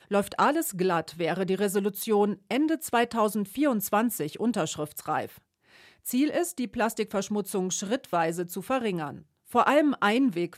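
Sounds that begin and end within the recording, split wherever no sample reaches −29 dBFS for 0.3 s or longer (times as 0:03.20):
0:06.07–0:09.11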